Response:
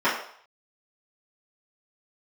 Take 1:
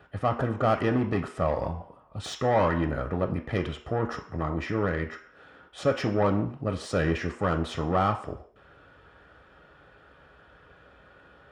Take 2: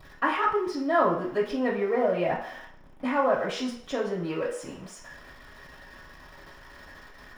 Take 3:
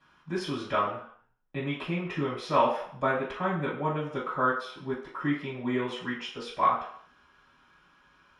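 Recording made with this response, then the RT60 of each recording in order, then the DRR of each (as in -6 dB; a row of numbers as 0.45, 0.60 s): 3; 0.60, 0.60, 0.60 s; 4.5, -5.0, -11.0 dB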